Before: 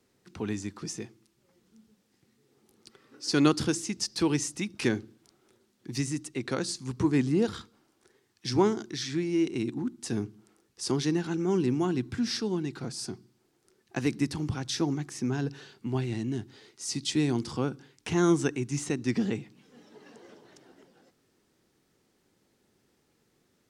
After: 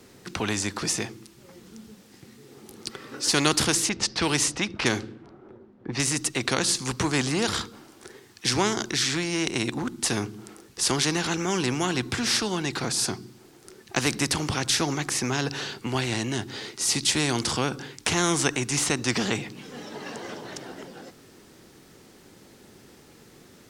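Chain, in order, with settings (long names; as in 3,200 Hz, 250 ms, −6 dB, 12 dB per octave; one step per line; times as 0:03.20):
0:03.89–0:06.00: low-pass that shuts in the quiet parts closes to 900 Hz, open at −23 dBFS
every bin compressed towards the loudest bin 2 to 1
level +4 dB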